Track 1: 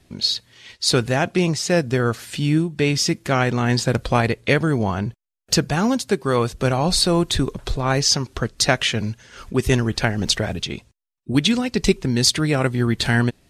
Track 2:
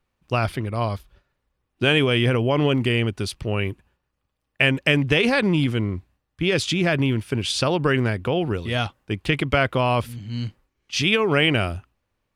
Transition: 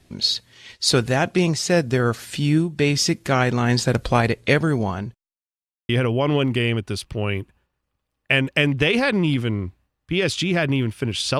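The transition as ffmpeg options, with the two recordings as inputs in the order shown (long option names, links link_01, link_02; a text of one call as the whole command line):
ffmpeg -i cue0.wav -i cue1.wav -filter_complex "[0:a]apad=whole_dur=11.39,atrim=end=11.39,asplit=2[link_01][link_02];[link_01]atrim=end=5.38,asetpts=PTS-STARTPTS,afade=type=out:start_time=4.47:duration=0.91:curve=qsin[link_03];[link_02]atrim=start=5.38:end=5.89,asetpts=PTS-STARTPTS,volume=0[link_04];[1:a]atrim=start=2.19:end=7.69,asetpts=PTS-STARTPTS,afade=type=in:duration=0.004:curve=hsin[link_05];[link_03][link_04][link_05]concat=n=3:v=0:a=1" out.wav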